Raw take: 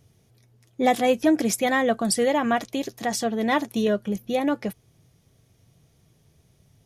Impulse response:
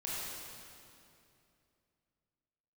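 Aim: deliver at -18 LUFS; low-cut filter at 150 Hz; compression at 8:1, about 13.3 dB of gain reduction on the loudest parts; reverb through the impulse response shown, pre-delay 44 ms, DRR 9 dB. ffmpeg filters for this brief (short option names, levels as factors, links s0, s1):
-filter_complex "[0:a]highpass=150,acompressor=threshold=0.0355:ratio=8,asplit=2[s0][s1];[1:a]atrim=start_sample=2205,adelay=44[s2];[s1][s2]afir=irnorm=-1:irlink=0,volume=0.251[s3];[s0][s3]amix=inputs=2:normalize=0,volume=5.62"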